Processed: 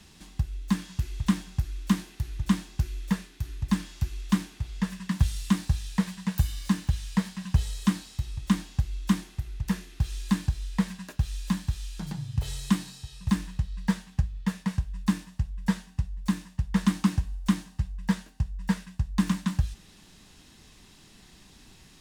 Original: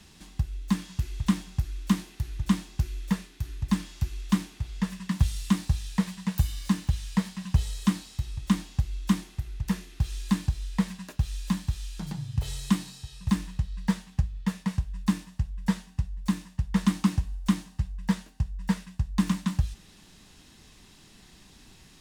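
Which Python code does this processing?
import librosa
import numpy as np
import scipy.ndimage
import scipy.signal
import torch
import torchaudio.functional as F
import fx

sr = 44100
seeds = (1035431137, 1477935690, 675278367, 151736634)

y = fx.dynamic_eq(x, sr, hz=1600.0, q=6.5, threshold_db=-59.0, ratio=4.0, max_db=4)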